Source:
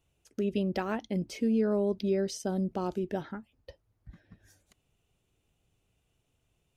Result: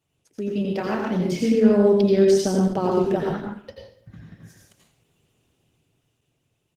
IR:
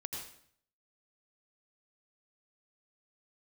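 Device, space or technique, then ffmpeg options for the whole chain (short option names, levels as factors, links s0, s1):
far-field microphone of a smart speaker: -filter_complex "[0:a]asplit=3[s0][s1][s2];[s0]afade=t=out:st=0.64:d=0.02[s3];[s1]asplit=2[s4][s5];[s5]adelay=28,volume=0.531[s6];[s4][s6]amix=inputs=2:normalize=0,afade=t=in:st=0.64:d=0.02,afade=t=out:st=1.55:d=0.02[s7];[s2]afade=t=in:st=1.55:d=0.02[s8];[s3][s7][s8]amix=inputs=3:normalize=0[s9];[1:a]atrim=start_sample=2205[s10];[s9][s10]afir=irnorm=-1:irlink=0,highpass=f=94:w=0.5412,highpass=f=94:w=1.3066,dynaudnorm=f=200:g=13:m=2.37,volume=1.78" -ar 48000 -c:a libopus -b:a 16k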